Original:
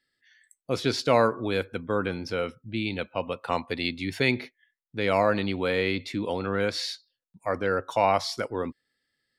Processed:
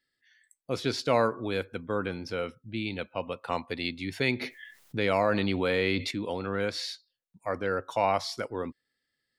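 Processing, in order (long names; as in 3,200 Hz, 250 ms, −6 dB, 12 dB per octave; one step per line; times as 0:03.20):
0:04.41–0:06.11: envelope flattener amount 50%
level −3.5 dB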